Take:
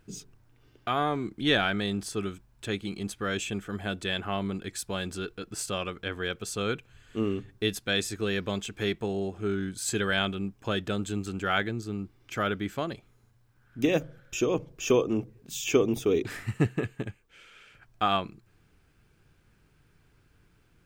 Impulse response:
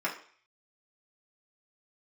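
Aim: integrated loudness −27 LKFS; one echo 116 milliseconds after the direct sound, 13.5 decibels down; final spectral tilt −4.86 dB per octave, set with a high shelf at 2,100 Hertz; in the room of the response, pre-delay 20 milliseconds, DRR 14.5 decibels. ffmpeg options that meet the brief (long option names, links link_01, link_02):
-filter_complex "[0:a]highshelf=frequency=2100:gain=-8,aecho=1:1:116:0.211,asplit=2[link_01][link_02];[1:a]atrim=start_sample=2205,adelay=20[link_03];[link_02][link_03]afir=irnorm=-1:irlink=0,volume=-22.5dB[link_04];[link_01][link_04]amix=inputs=2:normalize=0,volume=4.5dB"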